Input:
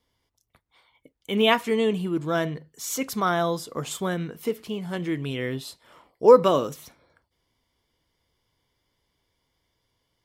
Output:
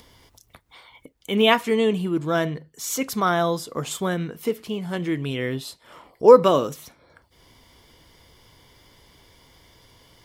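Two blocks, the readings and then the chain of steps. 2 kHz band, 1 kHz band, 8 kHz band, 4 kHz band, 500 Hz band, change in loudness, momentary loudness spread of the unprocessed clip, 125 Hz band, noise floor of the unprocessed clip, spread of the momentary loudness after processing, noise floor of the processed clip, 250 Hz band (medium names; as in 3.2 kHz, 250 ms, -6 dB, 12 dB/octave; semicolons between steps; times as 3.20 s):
+2.5 dB, +2.5 dB, +2.5 dB, +2.5 dB, +2.5 dB, +2.5 dB, 15 LU, +2.5 dB, -77 dBFS, 15 LU, -62 dBFS, +2.5 dB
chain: upward compressor, threshold -40 dBFS; trim +2.5 dB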